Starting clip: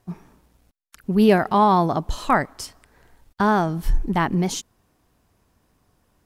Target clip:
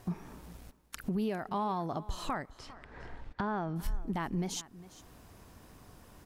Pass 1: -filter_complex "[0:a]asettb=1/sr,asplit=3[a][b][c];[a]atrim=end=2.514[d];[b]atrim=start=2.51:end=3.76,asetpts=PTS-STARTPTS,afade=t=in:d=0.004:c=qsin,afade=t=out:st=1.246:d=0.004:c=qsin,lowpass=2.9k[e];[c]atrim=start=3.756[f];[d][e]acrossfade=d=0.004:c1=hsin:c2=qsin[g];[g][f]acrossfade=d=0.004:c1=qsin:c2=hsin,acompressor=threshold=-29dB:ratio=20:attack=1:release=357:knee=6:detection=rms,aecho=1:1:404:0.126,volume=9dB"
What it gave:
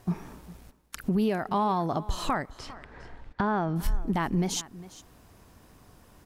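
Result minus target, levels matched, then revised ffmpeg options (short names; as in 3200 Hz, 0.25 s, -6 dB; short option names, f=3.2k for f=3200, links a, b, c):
compressor: peak gain reduction -7 dB
-filter_complex "[0:a]asettb=1/sr,asplit=3[a][b][c];[a]atrim=end=2.514[d];[b]atrim=start=2.51:end=3.76,asetpts=PTS-STARTPTS,afade=t=in:d=0.004:c=qsin,afade=t=out:st=1.246:d=0.004:c=qsin,lowpass=2.9k[e];[c]atrim=start=3.756[f];[d][e]acrossfade=d=0.004:c1=hsin:c2=qsin[g];[g][f]acrossfade=d=0.004:c1=qsin:c2=hsin,acompressor=threshold=-36.5dB:ratio=20:attack=1:release=357:knee=6:detection=rms,aecho=1:1:404:0.126,volume=9dB"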